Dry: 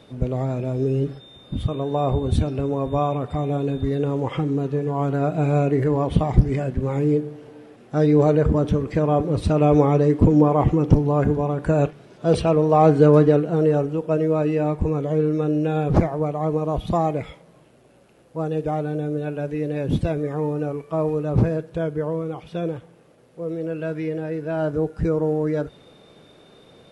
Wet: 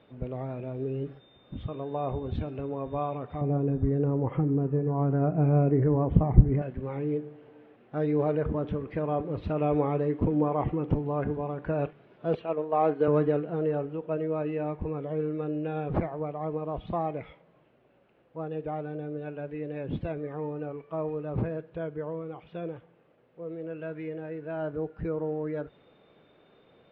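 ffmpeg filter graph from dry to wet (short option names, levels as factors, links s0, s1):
-filter_complex "[0:a]asettb=1/sr,asplit=3[s0][s1][s2];[s0]atrim=end=3.414[s3];[s1]atrim=start=3.41:end=6.62,asetpts=PTS-STARTPTS,afade=t=in:d=0.004:c=qsin,afade=t=out:st=3.206:d=0.004:c=qsin,lowpass=1600,lowshelf=f=320:g=12[s4];[s2]atrim=start=6.616[s5];[s3][s4]acrossfade=d=0.004:c1=hsin:c2=qsin[s6];[s6][s5]acrossfade=d=0.004:c1=qsin:c2=hsin,asettb=1/sr,asplit=3[s7][s8][s9];[s7]atrim=end=12.354[s10];[s8]atrim=start=12.35:end=13.08,asetpts=PTS-STARTPTS,afade=t=in:d=0.004:c=qsin,afade=t=out:st=0.726:d=0.004:c=qsin,agate=range=0.501:threshold=0.126:ratio=16:release=100:detection=peak,highpass=250,bandreject=f=5100:w=5.5[s11];[s9]atrim=start=13.076[s12];[s10][s11]acrossfade=d=0.004:c1=hsin:c2=qsin[s13];[s13][s12]acrossfade=d=0.004:c1=qsin:c2=hsin,lowpass=f=3100:w=0.5412,lowpass=f=3100:w=1.3066,lowshelf=f=260:g=-5,volume=0.398"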